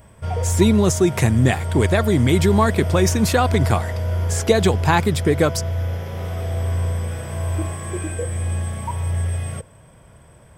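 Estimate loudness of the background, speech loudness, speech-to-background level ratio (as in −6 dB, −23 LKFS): −24.5 LKFS, −19.0 LKFS, 5.5 dB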